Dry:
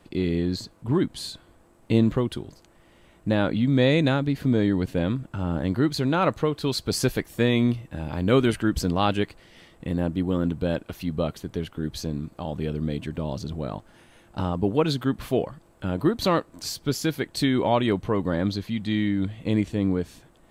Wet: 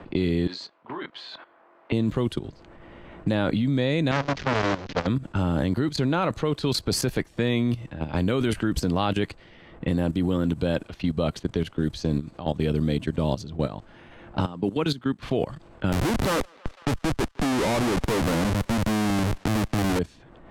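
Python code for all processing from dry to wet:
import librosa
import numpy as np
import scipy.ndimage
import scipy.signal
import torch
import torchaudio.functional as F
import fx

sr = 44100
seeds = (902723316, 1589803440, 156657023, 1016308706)

y = fx.chain(x, sr, fx.bandpass_edges(low_hz=740.0, high_hz=5200.0),
    fx.doubler(ms=23.0, db=-6.0), at=(0.47, 1.92))
y = fx.chain(y, sr, fx.delta_mod(bps=32000, step_db=-26.0),
    fx.transformer_sat(knee_hz=1700.0), at=(4.11, 5.07))
y = fx.chain(y, sr, fx.highpass(hz=160.0, slope=12),
    fx.peak_eq(hz=610.0, db=-5.5, octaves=1.0),
    fx.upward_expand(threshold_db=-38.0, expansion=1.5), at=(14.45, 15.23))
y = fx.chain(y, sr, fx.lowpass(hz=2200.0, slope=12),
    fx.schmitt(flips_db=-32.5),
    fx.echo_thinned(ms=164, feedback_pct=69, hz=580.0, wet_db=-23.0), at=(15.92, 19.99))
y = fx.level_steps(y, sr, step_db=15)
y = fx.env_lowpass(y, sr, base_hz=1900.0, full_db=-27.0)
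y = fx.band_squash(y, sr, depth_pct=40)
y = F.gain(torch.from_numpy(y), 7.0).numpy()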